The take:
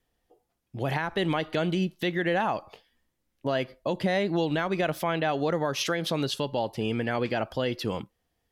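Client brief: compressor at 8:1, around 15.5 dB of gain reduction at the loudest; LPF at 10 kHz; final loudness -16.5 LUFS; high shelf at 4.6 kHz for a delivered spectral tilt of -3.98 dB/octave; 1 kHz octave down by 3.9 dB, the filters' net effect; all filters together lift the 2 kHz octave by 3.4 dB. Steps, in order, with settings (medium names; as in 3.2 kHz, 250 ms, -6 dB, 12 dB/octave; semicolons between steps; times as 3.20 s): low-pass 10 kHz; peaking EQ 1 kHz -7 dB; peaking EQ 2 kHz +7.5 dB; treble shelf 4.6 kHz -6.5 dB; compression 8:1, threshold -39 dBFS; trim +26 dB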